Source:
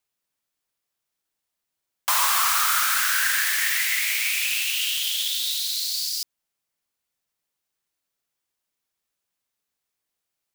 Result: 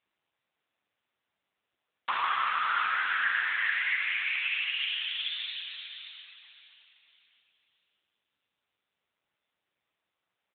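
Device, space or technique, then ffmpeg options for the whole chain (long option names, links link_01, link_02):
satellite phone: -filter_complex "[0:a]asplit=3[link_01][link_02][link_03];[link_01]afade=type=out:start_time=3.98:duration=0.02[link_04];[link_02]highpass=250,afade=type=in:start_time=3.98:duration=0.02,afade=type=out:start_time=4.77:duration=0.02[link_05];[link_03]afade=type=in:start_time=4.77:duration=0.02[link_06];[link_04][link_05][link_06]amix=inputs=3:normalize=0,highpass=390,lowpass=3300,aecho=1:1:561:0.106,asplit=2[link_07][link_08];[link_08]adelay=587,lowpass=frequency=2900:poles=1,volume=-8.5dB,asplit=2[link_09][link_10];[link_10]adelay=587,lowpass=frequency=2900:poles=1,volume=0.47,asplit=2[link_11][link_12];[link_12]adelay=587,lowpass=frequency=2900:poles=1,volume=0.47,asplit=2[link_13][link_14];[link_14]adelay=587,lowpass=frequency=2900:poles=1,volume=0.47,asplit=2[link_15][link_16];[link_16]adelay=587,lowpass=frequency=2900:poles=1,volume=0.47[link_17];[link_07][link_09][link_11][link_13][link_15][link_17]amix=inputs=6:normalize=0" -ar 8000 -c:a libopencore_amrnb -b:a 6700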